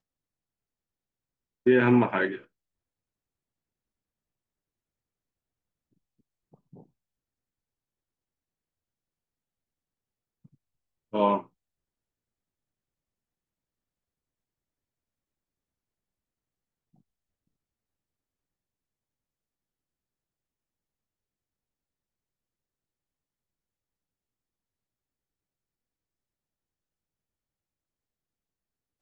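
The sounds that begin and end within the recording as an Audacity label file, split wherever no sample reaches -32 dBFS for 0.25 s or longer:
1.670000	2.360000	sound
11.140000	11.400000	sound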